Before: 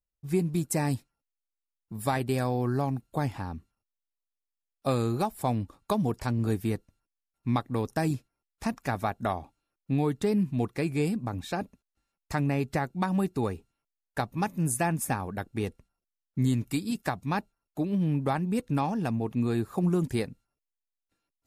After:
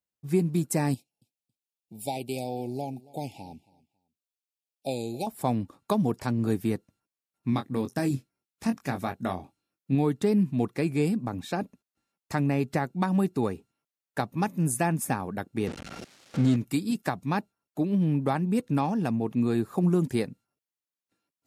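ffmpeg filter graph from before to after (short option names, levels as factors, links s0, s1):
-filter_complex "[0:a]asettb=1/sr,asplit=3[s0][s1][s2];[s0]atrim=end=0.944[s3];[s1]atrim=start=0.94:end=5.27,asetpts=PTS-STARTPTS,afade=t=in:d=0.004:c=qsin,afade=t=out:st=4.326:d=0.004:c=qsin,asuperstop=centerf=1400:order=12:qfactor=0.96,lowshelf=f=450:g=-10.5,aecho=1:1:275|550:0.0794|0.0167,atrim=end_sample=190953[s4];[s2]atrim=start=5.266[s5];[s3][s4]acrossfade=d=0.004:c1=hsin:c2=qsin[s6];[s6][s5]acrossfade=d=0.004:c1=qsin:c2=hsin,asettb=1/sr,asplit=3[s7][s8][s9];[s7]atrim=end=7.504[s10];[s8]atrim=start=7.5:end=9.95,asetpts=PTS-STARTPTS,afade=t=in:d=0.004:c=qsin,afade=t=out:st=2.446:d=0.004:c=qsin,equalizer=f=850:w=0.66:g=-5,asplit=2[s11][s12];[s12]adelay=22,volume=0.447[s13];[s11][s13]amix=inputs=2:normalize=0,atrim=end_sample=108045[s14];[s9]atrim=start=9.946[s15];[s10][s14]acrossfade=d=0.004:c1=hsin:c2=qsin[s16];[s16][s15]acrossfade=d=0.004:c1=qsin:c2=hsin,asettb=1/sr,asplit=3[s17][s18][s19];[s17]atrim=end=15.674[s20];[s18]atrim=start=15.67:end=16.56,asetpts=PTS-STARTPTS,afade=t=in:d=0.004:c=qsin,afade=t=out:st=0.886:d=0.004:c=qsin,aeval=exprs='val(0)+0.5*0.0299*sgn(val(0))':c=same,lowpass=5900,equalizer=f=1000:w=5.1:g=-5.5[s21];[s19]atrim=start=16.556[s22];[s20][s21]acrossfade=d=0.004:c1=hsin:c2=qsin[s23];[s23][s22]acrossfade=d=0.004:c1=qsin:c2=hsin,highpass=160,lowshelf=f=310:g=6"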